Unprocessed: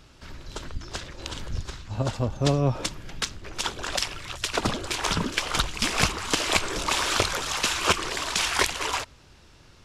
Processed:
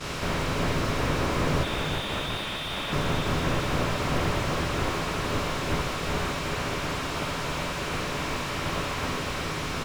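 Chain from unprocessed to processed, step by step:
compressor on every frequency bin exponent 0.2
downward expander −10 dBFS
brickwall limiter −11.5 dBFS, peak gain reduction 9.5 dB
compressor whose output falls as the input rises −27 dBFS, ratio −0.5
ambience of single reflections 12 ms −7.5 dB, 68 ms −6 dB
0:01.63–0:02.93: voice inversion scrambler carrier 3,700 Hz
repeating echo 369 ms, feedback 55%, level −6 dB
slew-rate limiting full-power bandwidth 67 Hz

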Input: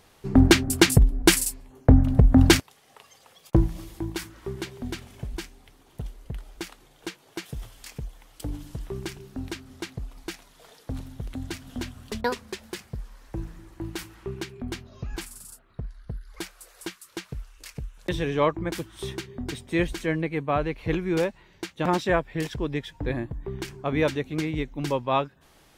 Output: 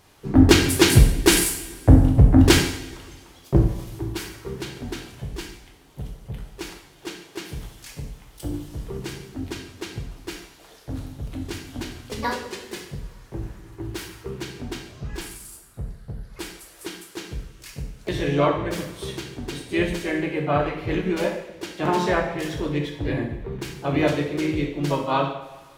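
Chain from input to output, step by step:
coupled-rooms reverb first 0.68 s, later 2 s, from −16 dB, DRR 0 dB
pitch-shifted copies added +3 semitones −8 dB
level −1 dB

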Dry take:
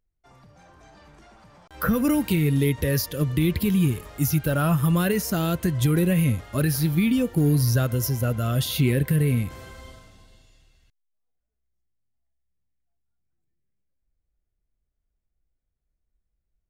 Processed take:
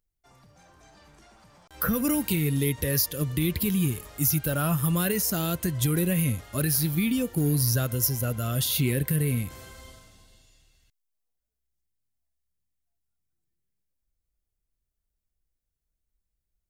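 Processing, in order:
high-shelf EQ 4,600 Hz +10.5 dB
level −4.5 dB

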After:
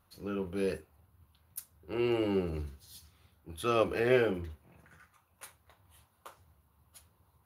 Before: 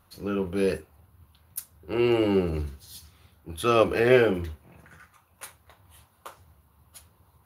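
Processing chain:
0:04.07–0:04.50: one half of a high-frequency compander decoder only
level −7.5 dB

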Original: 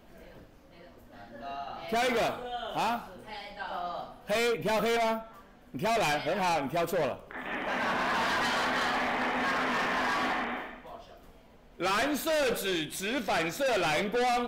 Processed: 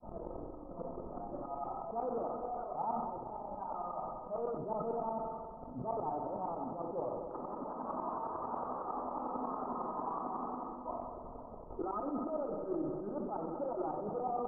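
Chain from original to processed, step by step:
parametric band 660 Hz +4 dB 0.77 octaves
hum removal 47.84 Hz, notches 10
transient designer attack +12 dB, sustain −11 dB
brickwall limiter −39 dBFS, peak gain reduction 30 dB
flanger 0.35 Hz, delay 1.2 ms, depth 5.3 ms, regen −42%
shaped tremolo saw up 11 Hz, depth 100%
Chebyshev low-pass with heavy ripple 1,300 Hz, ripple 6 dB
echo machine with several playback heads 64 ms, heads first and third, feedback 74%, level −13 dB
level that may fall only so fast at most 33 dB per second
level +17 dB

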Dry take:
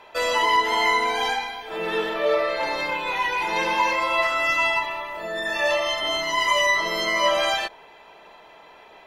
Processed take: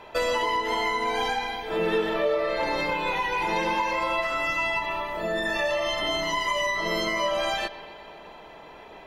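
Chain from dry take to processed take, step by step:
downward compressor, threshold −25 dBFS, peak gain reduction 9.5 dB
low-shelf EQ 390 Hz +11 dB
bucket-brigade delay 124 ms, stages 4,096, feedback 73%, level −17.5 dB

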